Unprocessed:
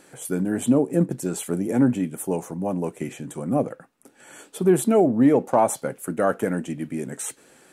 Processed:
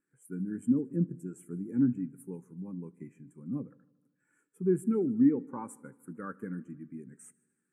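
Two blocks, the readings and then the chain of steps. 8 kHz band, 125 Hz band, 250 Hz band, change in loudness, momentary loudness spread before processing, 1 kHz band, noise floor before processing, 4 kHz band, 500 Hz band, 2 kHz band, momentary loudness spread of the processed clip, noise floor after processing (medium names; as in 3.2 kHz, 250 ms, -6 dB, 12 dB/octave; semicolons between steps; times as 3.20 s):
under -20 dB, -9.0 dB, -8.0 dB, -9.0 dB, 13 LU, -21.5 dB, -55 dBFS, under -35 dB, -14.5 dB, under -15 dB, 20 LU, -81 dBFS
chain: static phaser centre 1.6 kHz, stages 4; multi-head delay 76 ms, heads first and second, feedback 65%, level -20.5 dB; spectral contrast expander 1.5:1; trim -4.5 dB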